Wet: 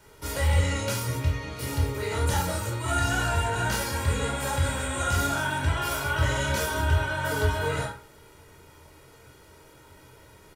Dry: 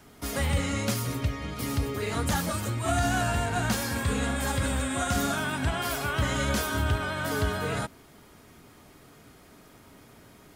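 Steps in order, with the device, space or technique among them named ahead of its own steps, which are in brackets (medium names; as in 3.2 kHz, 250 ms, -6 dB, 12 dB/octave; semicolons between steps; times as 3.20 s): microphone above a desk (comb 2.1 ms, depth 65%; reverberation RT60 0.45 s, pre-delay 15 ms, DRR -1.5 dB); trim -3.5 dB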